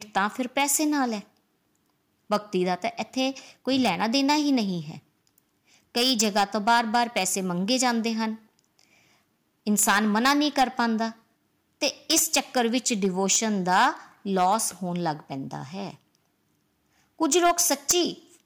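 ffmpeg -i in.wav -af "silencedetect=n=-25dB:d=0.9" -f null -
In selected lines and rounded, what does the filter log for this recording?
silence_start: 1.17
silence_end: 2.31 | silence_duration: 1.14
silence_start: 4.79
silence_end: 5.96 | silence_duration: 1.17
silence_start: 8.30
silence_end: 9.67 | silence_duration: 1.37
silence_start: 15.90
silence_end: 17.21 | silence_duration: 1.30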